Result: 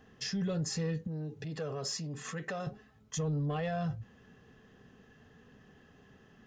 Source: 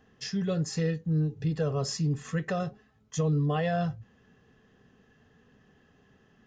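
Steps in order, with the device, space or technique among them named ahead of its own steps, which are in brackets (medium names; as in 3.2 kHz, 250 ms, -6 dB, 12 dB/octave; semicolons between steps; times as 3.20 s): soft clipper into limiter (saturation -21 dBFS, distortion -21 dB; peak limiter -30.5 dBFS, peak gain reduction 8 dB); 1.07–2.67 s: high-pass 310 Hz 6 dB/octave; trim +2.5 dB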